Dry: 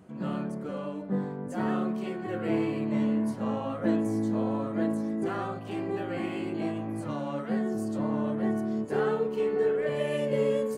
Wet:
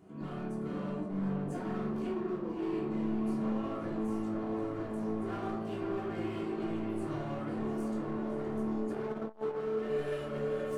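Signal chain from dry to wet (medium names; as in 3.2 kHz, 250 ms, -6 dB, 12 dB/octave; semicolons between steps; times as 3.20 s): 2.11–2.59 s: spectral contrast enhancement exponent 3.5; peaking EQ 370 Hz +5 dB 0.38 oct; de-hum 112.8 Hz, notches 3; peak limiter -25.5 dBFS, peak gain reduction 11 dB; hard clipper -31.5 dBFS, distortion -13 dB; tape echo 520 ms, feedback 69%, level -3 dB, low-pass 2.9 kHz; simulated room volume 590 m³, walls furnished, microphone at 3.2 m; 8.92–9.67 s: transformer saturation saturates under 420 Hz; trim -8 dB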